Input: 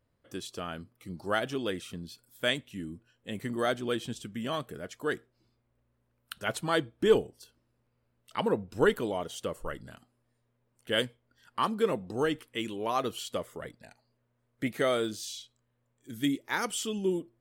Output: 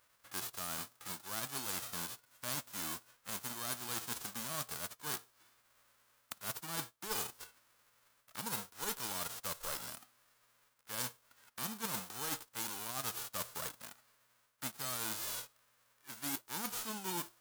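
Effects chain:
spectral envelope flattened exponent 0.1
parametric band 1,300 Hz +9 dB 1.3 octaves
reversed playback
downward compressor 10 to 1, threshold −37 dBFS, peak gain reduction 24 dB
reversed playback
dynamic equaliser 1,900 Hz, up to −7 dB, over −56 dBFS, Q 1
level +2 dB

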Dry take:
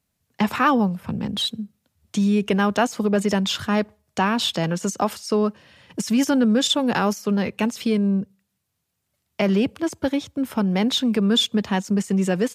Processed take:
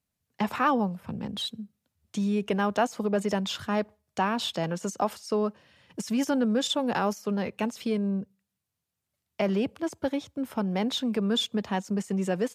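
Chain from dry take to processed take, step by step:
dynamic equaliser 690 Hz, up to +5 dB, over −35 dBFS, Q 0.83
level −8.5 dB

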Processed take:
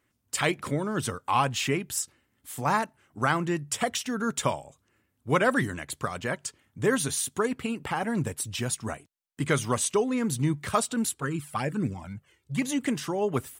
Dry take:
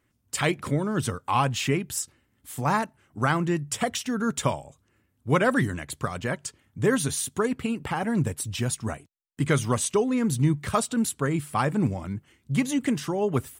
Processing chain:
low-shelf EQ 240 Hz −6.5 dB
0:11.14–0:12.62: flanger swept by the level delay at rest 2.5 ms, full sweep at −19.5 dBFS

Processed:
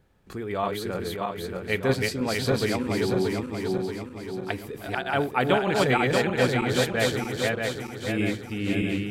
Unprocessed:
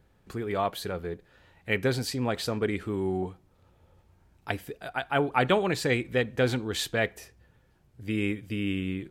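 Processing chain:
feedback delay that plays each chunk backwards 315 ms, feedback 70%, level −1 dB
mains-hum notches 60/120 Hz

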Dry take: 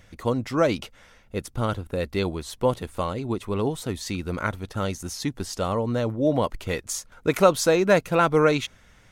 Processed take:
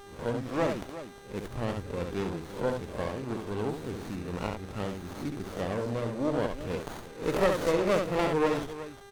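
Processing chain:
peak hold with a rise ahead of every peak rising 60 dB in 0.35 s
0:00.70–0:01.51: high-shelf EQ 6,000 Hz +6.5 dB
hum with harmonics 400 Hz, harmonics 23, −44 dBFS −3 dB per octave
multi-tap delay 68/356 ms −5/−13 dB
windowed peak hold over 17 samples
level −8 dB

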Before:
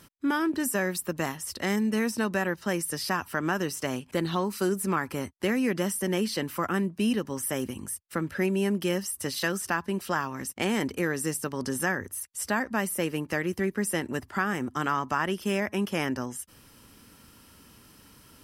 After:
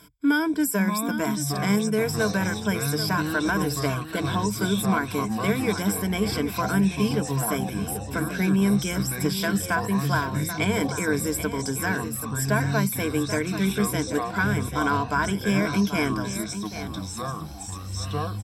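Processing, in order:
EQ curve with evenly spaced ripples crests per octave 1.7, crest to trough 16 dB
delay with pitch and tempo change per echo 451 ms, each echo −6 semitones, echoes 3, each echo −6 dB
single-tap delay 785 ms −11 dB

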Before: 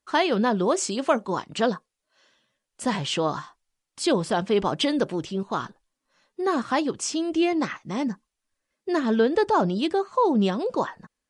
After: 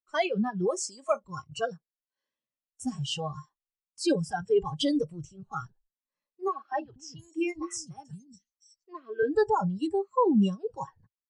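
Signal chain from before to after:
notch filter 3,600 Hz, Q 12
0:06.48–0:09.23: three-band delay without the direct sound mids, lows, highs 240/710 ms, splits 300/4,900 Hz
noise reduction from a noise print of the clip's start 24 dB
high-shelf EQ 5,100 Hz −7.5 dB
phaser whose notches keep moving one way rising 0.79 Hz

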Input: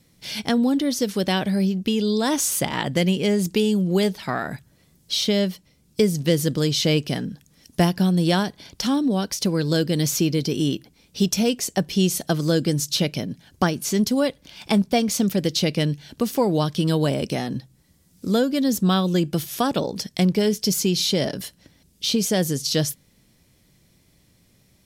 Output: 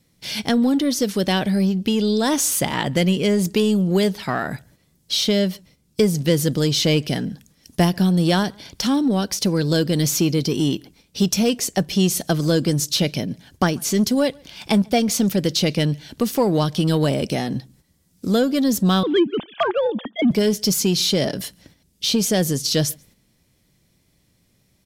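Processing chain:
0:19.03–0:20.31: three sine waves on the formant tracks
noise gate −53 dBFS, range −7 dB
in parallel at −6 dB: soft clipping −22 dBFS, distortion −9 dB
on the sum: slap from a distant wall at 24 metres, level −29 dB

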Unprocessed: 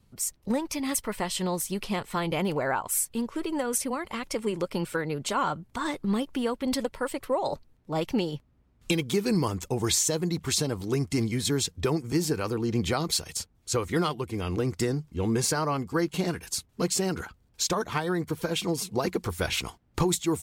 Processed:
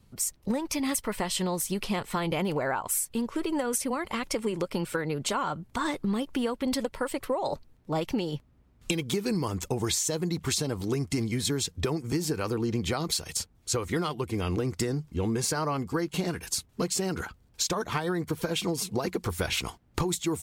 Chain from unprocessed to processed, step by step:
downward compressor, threshold −28 dBFS, peak gain reduction 8.5 dB
level +3 dB

